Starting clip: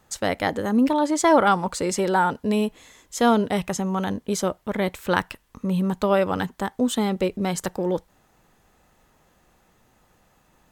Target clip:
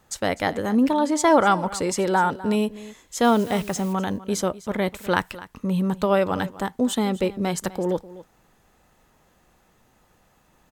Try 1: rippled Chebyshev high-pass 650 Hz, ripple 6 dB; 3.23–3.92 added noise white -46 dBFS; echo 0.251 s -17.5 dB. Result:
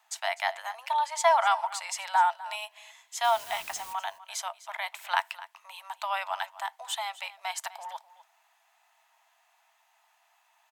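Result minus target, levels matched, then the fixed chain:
500 Hz band -5.0 dB
3.23–3.92 added noise white -46 dBFS; echo 0.251 s -17.5 dB

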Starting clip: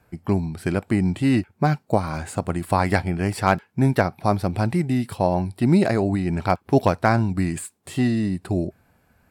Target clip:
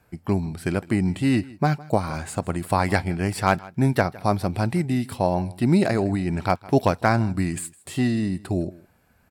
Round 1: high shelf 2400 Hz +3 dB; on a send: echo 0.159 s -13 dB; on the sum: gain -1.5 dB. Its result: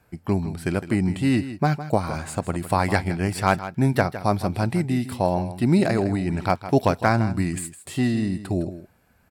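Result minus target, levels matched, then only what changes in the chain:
echo-to-direct +8.5 dB
change: echo 0.159 s -21.5 dB

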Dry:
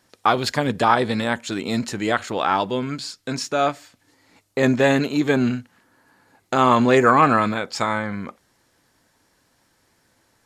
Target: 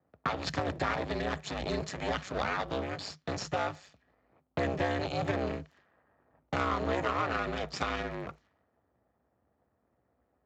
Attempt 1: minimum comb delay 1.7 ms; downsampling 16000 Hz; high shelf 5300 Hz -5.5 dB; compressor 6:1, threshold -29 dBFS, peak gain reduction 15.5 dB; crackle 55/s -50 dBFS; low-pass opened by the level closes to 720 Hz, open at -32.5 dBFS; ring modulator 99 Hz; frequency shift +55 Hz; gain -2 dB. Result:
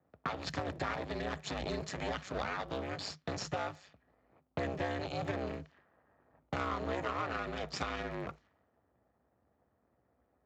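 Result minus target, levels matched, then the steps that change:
compressor: peak gain reduction +5.5 dB
change: compressor 6:1, threshold -22.5 dBFS, peak gain reduction 10 dB

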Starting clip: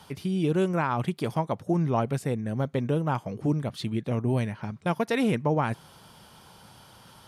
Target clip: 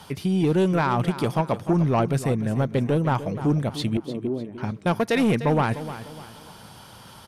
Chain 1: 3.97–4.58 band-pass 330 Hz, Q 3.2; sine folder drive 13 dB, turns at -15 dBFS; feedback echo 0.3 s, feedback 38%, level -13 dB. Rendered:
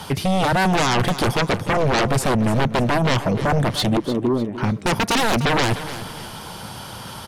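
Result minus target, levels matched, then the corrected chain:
sine folder: distortion +25 dB
3.97–4.58 band-pass 330 Hz, Q 3.2; sine folder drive 2 dB, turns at -15 dBFS; feedback echo 0.3 s, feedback 38%, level -13 dB

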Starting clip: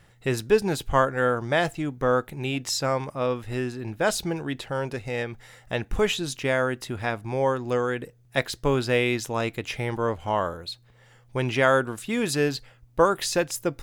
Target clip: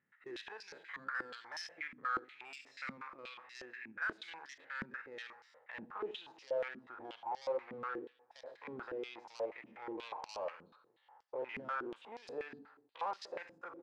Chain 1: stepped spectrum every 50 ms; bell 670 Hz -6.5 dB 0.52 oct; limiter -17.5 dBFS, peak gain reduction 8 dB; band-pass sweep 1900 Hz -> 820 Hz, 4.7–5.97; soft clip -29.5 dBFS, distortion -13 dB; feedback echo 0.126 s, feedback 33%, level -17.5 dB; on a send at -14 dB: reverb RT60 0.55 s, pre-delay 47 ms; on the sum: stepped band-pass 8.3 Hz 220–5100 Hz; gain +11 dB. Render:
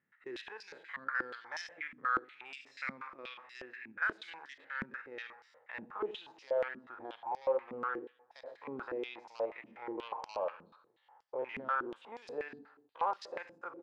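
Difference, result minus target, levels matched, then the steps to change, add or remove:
soft clip: distortion -7 dB
change: soft clip -38.5 dBFS, distortion -6 dB

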